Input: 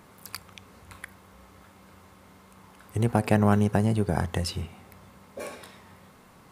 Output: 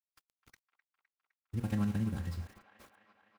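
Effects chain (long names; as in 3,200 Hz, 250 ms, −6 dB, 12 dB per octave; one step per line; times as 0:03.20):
running median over 15 samples
guitar amp tone stack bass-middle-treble 6-0-2
comb filter 3.7 ms, depth 44%
four-comb reverb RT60 1.4 s, combs from 32 ms, DRR 7.5 dB
centre clipping without the shift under −56 dBFS
phase-vocoder stretch with locked phases 0.52×
on a send: delay with a band-pass on its return 256 ms, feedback 74%, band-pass 1,400 Hz, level −11.5 dB
on the sum: level +8 dB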